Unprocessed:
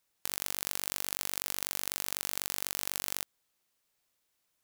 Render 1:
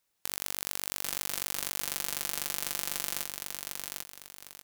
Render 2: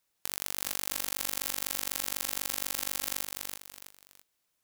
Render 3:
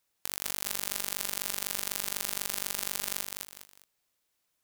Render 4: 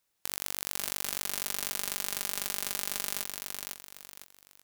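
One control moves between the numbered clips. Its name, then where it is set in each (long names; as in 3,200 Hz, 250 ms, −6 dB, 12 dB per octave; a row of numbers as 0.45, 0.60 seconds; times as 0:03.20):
feedback echo at a low word length, delay time: 796, 329, 203, 504 milliseconds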